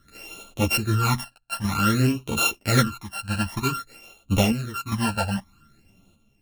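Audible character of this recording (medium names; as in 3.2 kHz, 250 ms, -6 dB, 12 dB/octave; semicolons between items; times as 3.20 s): a buzz of ramps at a fixed pitch in blocks of 32 samples; phasing stages 12, 0.53 Hz, lowest notch 360–1700 Hz; chopped level 0.61 Hz, depth 60%, duty 75%; a shimmering, thickened sound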